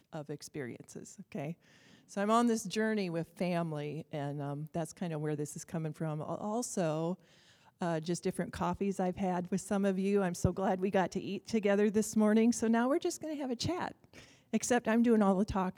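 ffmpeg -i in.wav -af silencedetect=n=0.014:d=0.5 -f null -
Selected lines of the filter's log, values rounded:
silence_start: 1.52
silence_end: 2.17 | silence_duration: 0.65
silence_start: 7.14
silence_end: 7.82 | silence_duration: 0.68
silence_start: 13.91
silence_end: 14.53 | silence_duration: 0.62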